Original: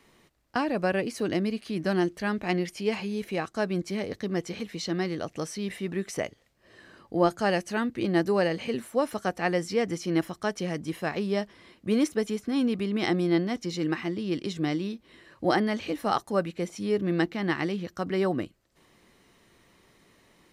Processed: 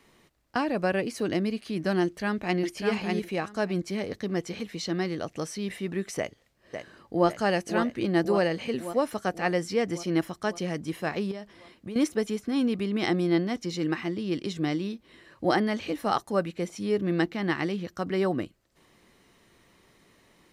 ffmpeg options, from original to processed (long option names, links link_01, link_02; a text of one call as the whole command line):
ffmpeg -i in.wav -filter_complex "[0:a]asplit=2[link_01][link_02];[link_02]afade=type=in:start_time=2.03:duration=0.01,afade=type=out:start_time=2.59:duration=0.01,aecho=0:1:600|1200|1800:0.668344|0.100252|0.0150377[link_03];[link_01][link_03]amix=inputs=2:normalize=0,asplit=2[link_04][link_05];[link_05]afade=type=in:start_time=6.18:duration=0.01,afade=type=out:start_time=7.28:duration=0.01,aecho=0:1:550|1100|1650|2200|2750|3300|3850|4400|4950:0.473151|0.307548|0.199906|0.129939|0.0844605|0.0548993|0.0356845|0.023195|0.0150767[link_06];[link_04][link_06]amix=inputs=2:normalize=0,asettb=1/sr,asplit=3[link_07][link_08][link_09];[link_07]atrim=end=11.314[link_10];[link_08]atrim=start=11.31:end=11.96,asetpts=PTS-STARTPTS,afade=type=in:duration=0.004:curve=qsin,afade=type=out:start_time=0.646:duration=0.004:curve=qsin,acompressor=threshold=-34dB:ratio=6:attack=3.2:release=140:knee=1:detection=peak[link_11];[link_09]atrim=start=11.956[link_12];[link_10][link_11]acrossfade=duration=0.004:curve1=hsin:curve2=qsin[link_13];[link_13][link_12]acrossfade=duration=0.004:curve1=qsin:curve2=hsin" out.wav